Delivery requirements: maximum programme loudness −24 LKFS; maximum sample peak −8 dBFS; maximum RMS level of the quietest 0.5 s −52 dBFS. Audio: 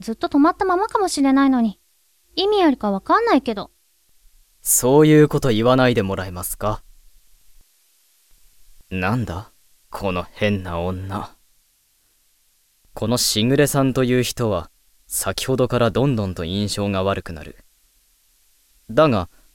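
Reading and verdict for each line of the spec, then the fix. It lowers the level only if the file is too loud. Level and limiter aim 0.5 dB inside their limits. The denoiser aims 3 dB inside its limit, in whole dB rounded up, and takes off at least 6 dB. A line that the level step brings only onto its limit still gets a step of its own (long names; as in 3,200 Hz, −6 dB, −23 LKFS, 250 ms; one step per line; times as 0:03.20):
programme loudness −19.0 LKFS: out of spec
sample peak −3.0 dBFS: out of spec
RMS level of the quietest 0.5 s −62 dBFS: in spec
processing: level −5.5 dB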